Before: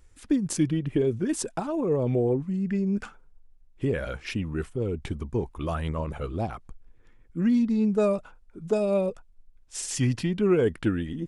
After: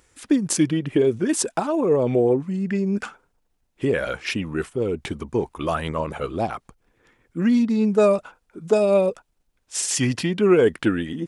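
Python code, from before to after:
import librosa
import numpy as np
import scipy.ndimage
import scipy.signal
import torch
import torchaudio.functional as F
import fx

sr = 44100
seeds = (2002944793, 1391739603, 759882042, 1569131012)

y = fx.highpass(x, sr, hz=330.0, slope=6)
y = y * librosa.db_to_amplitude(8.5)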